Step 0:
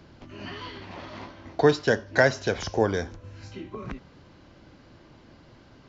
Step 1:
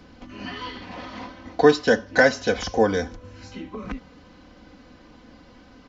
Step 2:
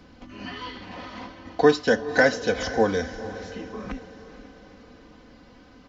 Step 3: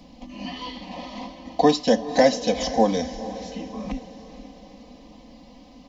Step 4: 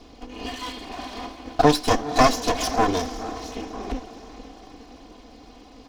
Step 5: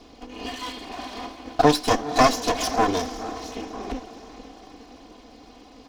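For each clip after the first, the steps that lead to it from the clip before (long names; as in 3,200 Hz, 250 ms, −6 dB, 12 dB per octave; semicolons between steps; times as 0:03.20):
comb filter 4 ms, depth 71%; level +2 dB
feedback delay with all-pass diffusion 469 ms, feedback 47%, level −13.5 dB; level −2 dB
phaser with its sweep stopped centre 390 Hz, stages 6; level +5.5 dB
lower of the sound and its delayed copy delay 2.8 ms; level +3 dB
low-shelf EQ 99 Hz −6 dB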